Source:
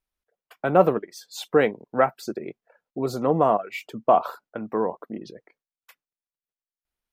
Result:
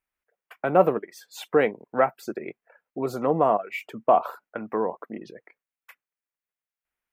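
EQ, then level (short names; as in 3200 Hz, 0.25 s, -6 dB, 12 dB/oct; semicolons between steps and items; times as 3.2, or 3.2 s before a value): resonant high shelf 3000 Hz -10 dB, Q 1.5; dynamic EQ 1700 Hz, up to -7 dB, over -36 dBFS, Q 0.9; tilt +2 dB/oct; +1.5 dB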